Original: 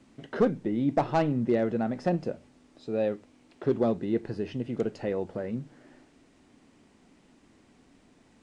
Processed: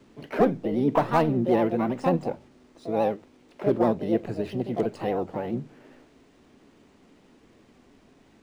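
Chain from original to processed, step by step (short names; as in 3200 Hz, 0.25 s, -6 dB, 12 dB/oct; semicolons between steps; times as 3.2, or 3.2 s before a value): harmoniser +7 st -5 dB; vibrato 12 Hz 62 cents; decimation joined by straight lines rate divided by 3×; gain +2 dB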